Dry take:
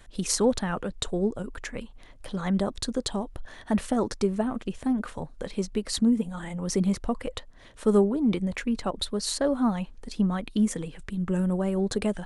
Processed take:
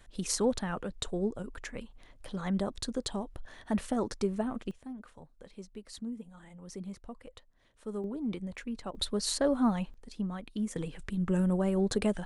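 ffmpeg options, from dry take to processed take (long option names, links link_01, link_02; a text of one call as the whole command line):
ffmpeg -i in.wav -af "asetnsamples=nb_out_samples=441:pad=0,asendcmd='4.71 volume volume -17dB;8.04 volume volume -10.5dB;8.95 volume volume -2.5dB;9.94 volume volume -10dB;10.76 volume volume -2dB',volume=-5.5dB" out.wav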